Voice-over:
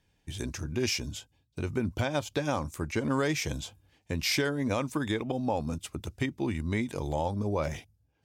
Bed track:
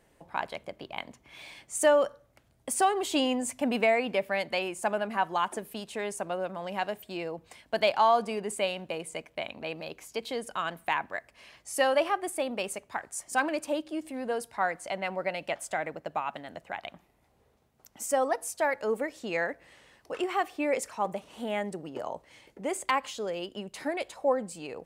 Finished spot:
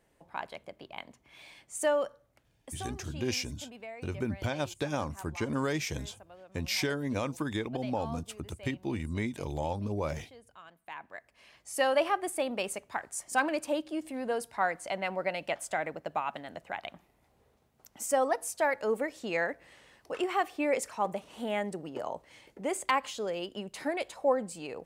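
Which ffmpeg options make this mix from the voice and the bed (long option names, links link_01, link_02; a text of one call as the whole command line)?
ffmpeg -i stem1.wav -i stem2.wav -filter_complex "[0:a]adelay=2450,volume=-3dB[link_01];[1:a]volume=14dB,afade=type=out:start_time=2.45:duration=0.42:silence=0.188365,afade=type=in:start_time=10.81:duration=1.27:silence=0.105925[link_02];[link_01][link_02]amix=inputs=2:normalize=0" out.wav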